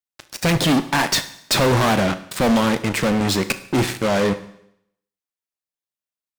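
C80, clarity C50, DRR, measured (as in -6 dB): 17.5 dB, 14.5 dB, 11.0 dB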